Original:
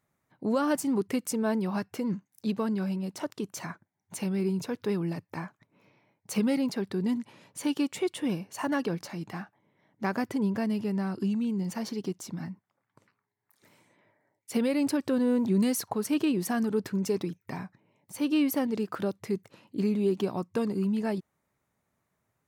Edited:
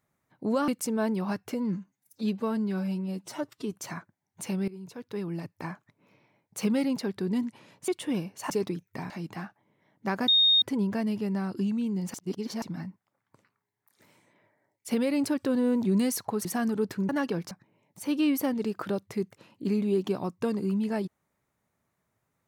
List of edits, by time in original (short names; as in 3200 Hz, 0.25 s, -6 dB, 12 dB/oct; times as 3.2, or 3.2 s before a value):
0.68–1.14 cut
2–3.46 stretch 1.5×
4.41–5.4 fade in, from -19 dB
7.61–8.03 cut
8.65–9.07 swap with 17.04–17.64
10.25 add tone 3700 Hz -17.5 dBFS 0.34 s
11.77–12.25 reverse
16.08–16.4 cut